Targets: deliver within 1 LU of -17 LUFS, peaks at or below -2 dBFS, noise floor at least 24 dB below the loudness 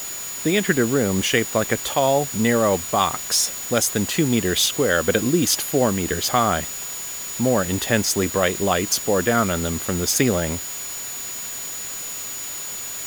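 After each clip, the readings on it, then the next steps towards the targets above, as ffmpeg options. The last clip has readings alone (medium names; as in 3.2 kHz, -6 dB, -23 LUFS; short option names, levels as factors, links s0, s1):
steady tone 6.9 kHz; tone level -31 dBFS; noise floor -31 dBFS; noise floor target -45 dBFS; loudness -21.0 LUFS; peak level -3.5 dBFS; loudness target -17.0 LUFS
-> -af "bandreject=f=6900:w=30"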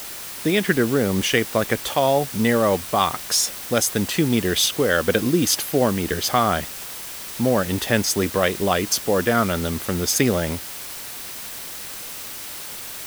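steady tone not found; noise floor -34 dBFS; noise floor target -46 dBFS
-> -af "afftdn=nr=12:nf=-34"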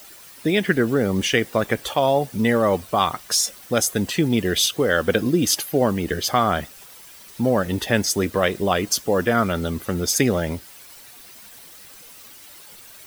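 noise floor -44 dBFS; noise floor target -45 dBFS
-> -af "afftdn=nr=6:nf=-44"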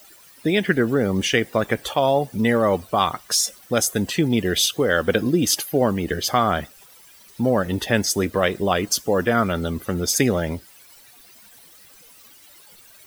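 noise floor -49 dBFS; loudness -21.0 LUFS; peak level -4.0 dBFS; loudness target -17.0 LUFS
-> -af "volume=1.58,alimiter=limit=0.794:level=0:latency=1"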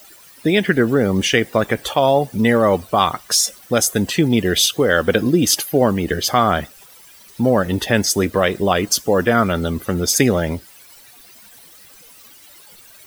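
loudness -17.0 LUFS; peak level -2.0 dBFS; noise floor -45 dBFS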